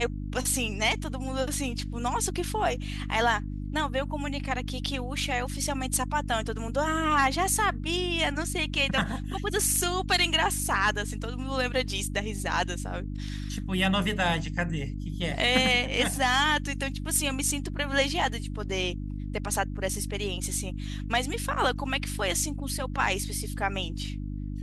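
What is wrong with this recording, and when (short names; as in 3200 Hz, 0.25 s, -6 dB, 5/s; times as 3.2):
hum 50 Hz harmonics 6 -34 dBFS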